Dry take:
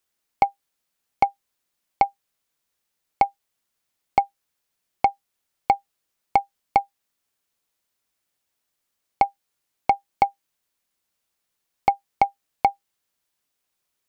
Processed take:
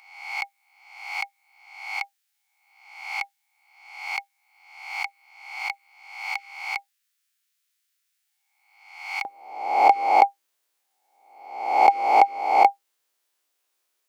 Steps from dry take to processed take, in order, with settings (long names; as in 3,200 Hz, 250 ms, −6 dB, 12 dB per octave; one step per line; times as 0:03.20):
peak hold with a rise ahead of every peak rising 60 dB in 0.82 s
high-pass filter 1,500 Hz 24 dB per octave, from 0:09.25 320 Hz
level +1 dB